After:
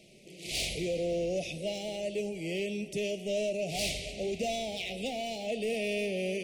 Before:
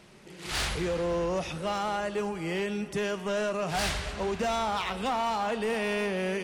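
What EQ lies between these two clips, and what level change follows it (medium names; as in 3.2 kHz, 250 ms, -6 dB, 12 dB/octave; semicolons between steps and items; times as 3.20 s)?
elliptic band-stop 660–2300 Hz, stop band 40 dB; peaking EQ 65 Hz -12.5 dB 0.46 oct; bass shelf 280 Hz -4.5 dB; 0.0 dB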